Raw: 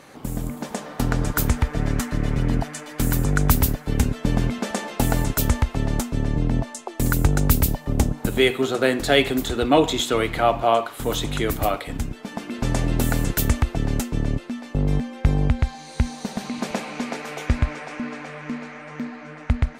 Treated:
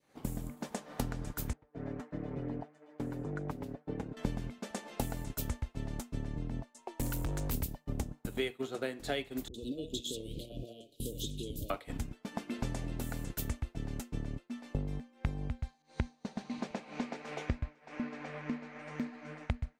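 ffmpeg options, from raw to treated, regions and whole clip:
ffmpeg -i in.wav -filter_complex "[0:a]asettb=1/sr,asplit=3[link_01][link_02][link_03];[link_01]atrim=end=1.534[link_04];[link_02]atrim=start=1.53:end=4.17,asetpts=PTS-STARTPTS,afade=type=in:duration=0.004:curve=qsin,afade=type=out:start_time=2.636:duration=0.004:curve=qsin,bandpass=frequency=470:width_type=q:width=0.81,flanger=delay=6.2:depth=1.1:regen=-33:speed=1.6:shape=sinusoidal[link_05];[link_03]atrim=start=4.166[link_06];[link_04][link_05]acrossfade=duration=0.004:curve1=hsin:curve2=qsin[link_07];[link_07][link_06]acrossfade=duration=0.004:curve1=qsin:curve2=hsin,asettb=1/sr,asplit=3[link_08][link_09][link_10];[link_08]atrim=end=6.784[link_11];[link_09]atrim=start=6.78:end=7.54,asetpts=PTS-STARTPTS,afade=type=in:duration=0.004:curve=qsin,afade=type=out:start_time=0.756:duration=0.004:curve=qsin,aeval=exprs='val(0)+0.00891*sin(2*PI*940*n/s)':channel_layout=same,asoftclip=type=hard:threshold=-19.5dB[link_12];[link_10]atrim=start=7.536[link_13];[link_11][link_12]acrossfade=duration=0.004:curve1=hsin:curve2=qsin[link_14];[link_14][link_13]acrossfade=duration=0.004:curve1=qsin:curve2=hsin,asettb=1/sr,asplit=3[link_15][link_16][link_17];[link_15]atrim=end=9.484[link_18];[link_16]atrim=start=9.48:end=11.7,asetpts=PTS-STARTPTS,afade=type=in:duration=0.004:curve=qsin,afade=type=out:start_time=2.216:duration=0.004:curve=qsin,acompressor=threshold=-27dB:ratio=5:attack=3.2:release=140:knee=1:detection=peak,asuperstop=centerf=1300:order=12:qfactor=0.53,acrossover=split=580[link_19][link_20];[link_20]adelay=60[link_21];[link_19][link_21]amix=inputs=2:normalize=0,atrim=end_sample=97902[link_22];[link_17]atrim=start=11.696[link_23];[link_18][link_22]acrossfade=duration=0.004:curve1=hsin:curve2=qsin[link_24];[link_24][link_23]acrossfade=duration=0.004:curve1=qsin:curve2=hsin,asettb=1/sr,asplit=3[link_25][link_26][link_27];[link_25]atrim=end=15.824[link_28];[link_26]atrim=start=15.82:end=18.79,asetpts=PTS-STARTPTS,afade=type=in:duration=0.004:curve=qsin,afade=type=out:start_time=2.966:duration=0.004:curve=qsin,lowpass=6500,adynamicequalizer=threshold=0.00501:dfrequency=2200:dqfactor=0.7:tfrequency=2200:tqfactor=0.7:attack=5:release=100:ratio=0.375:range=1.5:mode=cutabove:tftype=highshelf[link_29];[link_27]atrim=start=18.786[link_30];[link_28][link_29]acrossfade=duration=0.004:curve1=hsin:curve2=qsin[link_31];[link_31][link_30]acrossfade=duration=0.004:curve1=qsin:curve2=hsin,acompressor=threshold=-34dB:ratio=10,adynamicequalizer=threshold=0.002:dfrequency=1300:dqfactor=1.8:tfrequency=1300:tqfactor=1.8:attack=5:release=100:ratio=0.375:range=1.5:mode=cutabove:tftype=bell,agate=range=-33dB:threshold=-31dB:ratio=3:detection=peak,volume=5.5dB" out.wav

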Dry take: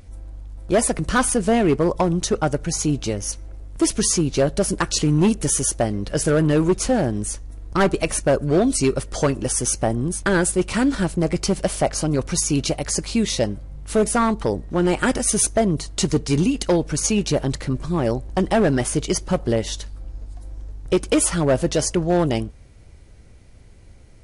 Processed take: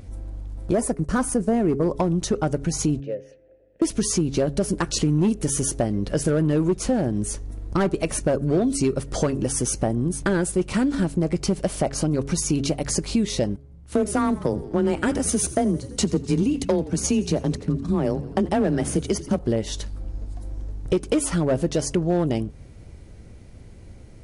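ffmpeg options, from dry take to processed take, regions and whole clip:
ffmpeg -i in.wav -filter_complex "[0:a]asettb=1/sr,asplit=3[link_01][link_02][link_03];[link_01]atrim=end=0.734[link_04];[link_02]atrim=start=0.73:end=1.83,asetpts=PTS-STARTPTS,afade=type=in:duration=0.004:curve=qsin,afade=type=out:start_time=1.096:duration=0.004:curve=qsin,agate=range=-33dB:threshold=-22dB:ratio=3:release=100:detection=peak,equalizer=frequency=3200:width=1.1:gain=-9[link_05];[link_03]atrim=start=1.826[link_06];[link_04][link_05]acrossfade=duration=0.004:curve1=hsin:curve2=qsin[link_07];[link_07][link_06]acrossfade=duration=0.004:curve1=qsin:curve2=hsin,asettb=1/sr,asplit=3[link_08][link_09][link_10];[link_08]atrim=end=3.004[link_11];[link_09]atrim=start=3:end=3.82,asetpts=PTS-STARTPTS,afade=type=in:duration=0.004:curve=qsin,afade=type=out:start_time=0.816:duration=0.004:curve=qsin,asplit=3[link_12][link_13][link_14];[link_12]bandpass=frequency=530:width_type=q:width=8,volume=0dB[link_15];[link_13]bandpass=frequency=1840:width_type=q:width=8,volume=-6dB[link_16];[link_14]bandpass=frequency=2480:width_type=q:width=8,volume=-9dB[link_17];[link_15][link_16][link_17]amix=inputs=3:normalize=0,aemphasis=mode=reproduction:type=75fm,volume=24.5dB,asoftclip=hard,volume=-24.5dB[link_18];[link_10]atrim=start=3.816[link_19];[link_11][link_18]acrossfade=duration=0.004:curve1=hsin:curve2=qsin[link_20];[link_20][link_19]acrossfade=duration=0.004:curve1=qsin:curve2=hsin,asettb=1/sr,asplit=3[link_21][link_22][link_23];[link_21]atrim=end=13.564[link_24];[link_22]atrim=start=13.56:end=19.39,asetpts=PTS-STARTPTS,afade=type=in:duration=0.004:curve=qsin,afade=type=out:start_time=5.826:duration=0.004:curve=qsin,agate=range=-15dB:threshold=-29dB:ratio=16:release=100:detection=peak,asplit=7[link_25][link_26][link_27][link_28][link_29][link_30][link_31];[link_26]adelay=84,afreqshift=-50,volume=-18.5dB[link_32];[link_27]adelay=168,afreqshift=-100,volume=-22.5dB[link_33];[link_28]adelay=252,afreqshift=-150,volume=-26.5dB[link_34];[link_29]adelay=336,afreqshift=-200,volume=-30.5dB[link_35];[link_30]adelay=420,afreqshift=-250,volume=-34.6dB[link_36];[link_31]adelay=504,afreqshift=-300,volume=-38.6dB[link_37];[link_25][link_32][link_33][link_34][link_35][link_36][link_37]amix=inputs=7:normalize=0,atrim=end_sample=257103,afreqshift=20[link_38];[link_23]atrim=start=19.386[link_39];[link_24][link_38]acrossfade=duration=0.004:curve1=hsin:curve2=qsin[link_40];[link_40][link_39]acrossfade=duration=0.004:curve1=qsin:curve2=hsin,equalizer=frequency=210:width=0.38:gain=7,bandreject=frequency=139.1:width_type=h:width=4,bandreject=frequency=278.2:width_type=h:width=4,bandreject=frequency=417.3:width_type=h:width=4,acompressor=threshold=-22dB:ratio=2.5" out.wav

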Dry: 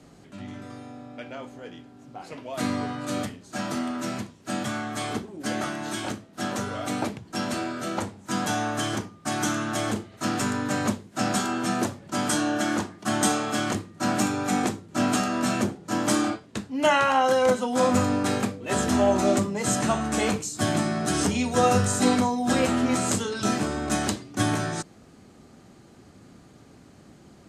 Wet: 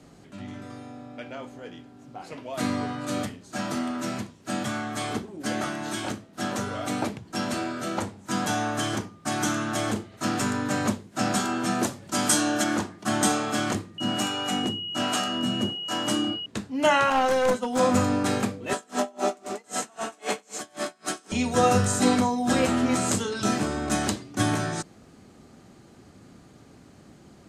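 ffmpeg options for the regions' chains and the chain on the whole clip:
ffmpeg -i in.wav -filter_complex "[0:a]asettb=1/sr,asplit=3[link_01][link_02][link_03];[link_01]atrim=end=11.844[link_04];[link_02]atrim=start=11.84:end=12.64,asetpts=PTS-STARTPTS,afade=type=in:duration=0.004:curve=qsin,afade=type=out:start_time=0.796:duration=0.004:curve=qsin,highshelf=frequency=3800:gain=8,bandreject=frequency=50:width_type=h:width=6,bandreject=frequency=100:width_type=h:width=6,bandreject=frequency=150:width_type=h:width=6[link_05];[link_03]atrim=start=12.636[link_06];[link_04][link_05]acrossfade=duration=0.004:curve1=hsin:curve2=qsin[link_07];[link_07][link_06]acrossfade=duration=0.004:curve1=qsin:curve2=hsin,asettb=1/sr,asplit=3[link_08][link_09][link_10];[link_08]atrim=end=13.984[link_11];[link_09]atrim=start=13.98:end=16.46,asetpts=PTS-STARTPTS,afade=type=in:duration=0.004:curve=qsin,afade=type=out:start_time=2.476:duration=0.004:curve=qsin,acrossover=split=430[link_12][link_13];[link_12]aeval=exprs='val(0)*(1-0.7/2+0.7/2*cos(2*PI*1.3*n/s))':channel_layout=same[link_14];[link_13]aeval=exprs='val(0)*(1-0.7/2-0.7/2*cos(2*PI*1.3*n/s))':channel_layout=same[link_15];[link_14][link_15]amix=inputs=2:normalize=0,aeval=exprs='val(0)+0.0282*sin(2*PI*2900*n/s)':channel_layout=same[link_16];[link_10]atrim=start=16.456[link_17];[link_11][link_16]acrossfade=duration=0.004:curve1=hsin:curve2=qsin[link_18];[link_18][link_17]acrossfade=duration=0.004:curve1=qsin:curve2=hsin,asettb=1/sr,asplit=3[link_19][link_20][link_21];[link_19]atrim=end=17.104[link_22];[link_20]atrim=start=17.1:end=17.79,asetpts=PTS-STARTPTS,afade=type=in:duration=0.004:curve=qsin,afade=type=out:start_time=0.686:duration=0.004:curve=qsin,agate=range=-33dB:threshold=-26dB:ratio=3:release=100:detection=peak,aeval=exprs='clip(val(0),-1,0.075)':channel_layout=same[link_23];[link_21]atrim=start=17.786[link_24];[link_22][link_23]acrossfade=duration=0.004:curve1=hsin:curve2=qsin[link_25];[link_25][link_24]acrossfade=duration=0.004:curve1=qsin:curve2=hsin,asettb=1/sr,asplit=3[link_26][link_27][link_28];[link_26]atrim=end=18.734[link_29];[link_27]atrim=start=18.73:end=21.32,asetpts=PTS-STARTPTS,afade=type=in:duration=0.004:curve=qsin,afade=type=out:start_time=2.586:duration=0.004:curve=qsin,highpass=350,aecho=1:1:93|186|279|372|465|558|651:0.668|0.354|0.188|0.0995|0.0527|0.0279|0.0148,atrim=end_sample=114219,aeval=exprs='val(0)*pow(10,-33*(0.5-0.5*cos(2*PI*3.8*n/s))/20)':channel_layout=same[link_30];[link_28]atrim=start=21.316[link_31];[link_29][link_30]acrossfade=duration=0.004:curve1=hsin:curve2=qsin[link_32];[link_32][link_31]acrossfade=duration=0.004:curve1=qsin:curve2=hsin" out.wav

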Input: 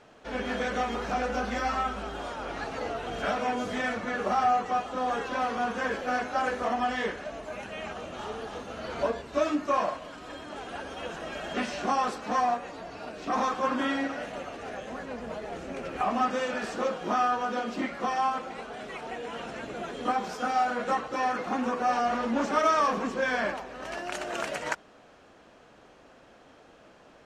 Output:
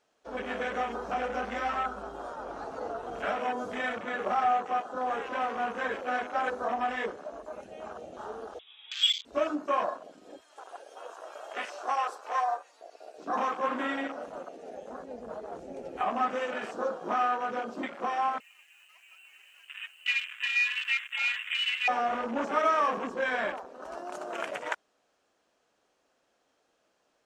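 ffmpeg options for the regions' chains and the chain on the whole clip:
ffmpeg -i in.wav -filter_complex "[0:a]asettb=1/sr,asplit=3[link_01][link_02][link_03];[link_01]atrim=end=8.594[link_04];[link_02]atrim=start=8.59:end=9.25,asetpts=PTS-STARTPTS,afade=type=in:duration=0.004:curve=qsin,afade=type=out:start_time=0.656:duration=0.004:curve=qsin,lowshelf=frequency=360:width_type=q:width=1.5:gain=-6,lowpass=frequency=3300:width_type=q:width=0.5098,lowpass=frequency=3300:width_type=q:width=0.6013,lowpass=frequency=3300:width_type=q:width=0.9,lowpass=frequency=3300:width_type=q:width=2.563,afreqshift=-3900[link_05];[link_03]atrim=start=9.246[link_06];[link_04][link_05]acrossfade=duration=0.004:curve1=hsin:curve2=qsin[link_07];[link_07][link_06]acrossfade=duration=0.004:curve1=qsin:curve2=hsin,asettb=1/sr,asplit=3[link_08][link_09][link_10];[link_08]atrim=end=10.414[link_11];[link_09]atrim=start=10.41:end=13.18,asetpts=PTS-STARTPTS,afade=type=in:duration=0.004:curve=qsin,afade=type=out:start_time=2.766:duration=0.004:curve=qsin,highpass=570,highshelf=frequency=8000:gain=6.5[link_12];[link_10]atrim=start=13.176[link_13];[link_11][link_12]acrossfade=duration=0.004:curve1=hsin:curve2=qsin[link_14];[link_14][link_13]acrossfade=duration=0.004:curve1=qsin:curve2=hsin,asettb=1/sr,asplit=3[link_15][link_16][link_17];[link_15]atrim=end=18.404[link_18];[link_16]atrim=start=18.4:end=21.88,asetpts=PTS-STARTPTS,afade=type=in:duration=0.004:curve=qsin,afade=type=out:start_time=3.476:duration=0.004:curve=qsin,lowpass=frequency=2700:width_type=q:width=0.5098,lowpass=frequency=2700:width_type=q:width=0.6013,lowpass=frequency=2700:width_type=q:width=0.9,lowpass=frequency=2700:width_type=q:width=2.563,afreqshift=-3200,highpass=frequency=990:poles=1,aeval=exprs='sgn(val(0))*max(abs(val(0))-0.00224,0)':channel_layout=same[link_19];[link_17]atrim=start=21.876[link_20];[link_18][link_19]acrossfade=duration=0.004:curve1=hsin:curve2=qsin[link_21];[link_21][link_20]acrossfade=duration=0.004:curve1=qsin:curve2=hsin,afwtdn=0.02,bass=frequency=250:gain=-9,treble=frequency=4000:gain=10,volume=-1.5dB" out.wav

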